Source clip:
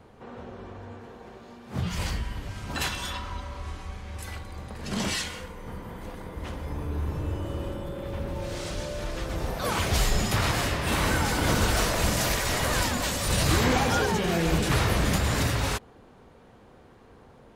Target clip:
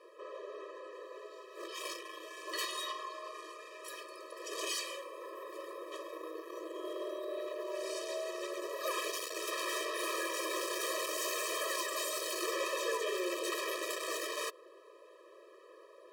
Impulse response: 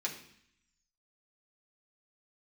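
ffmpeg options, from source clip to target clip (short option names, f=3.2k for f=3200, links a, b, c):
-af "asoftclip=type=tanh:threshold=-28.5dB,asetrate=48000,aresample=44100,afftfilt=real='re*eq(mod(floor(b*sr/1024/330),2),1)':imag='im*eq(mod(floor(b*sr/1024/330),2),1)':win_size=1024:overlap=0.75"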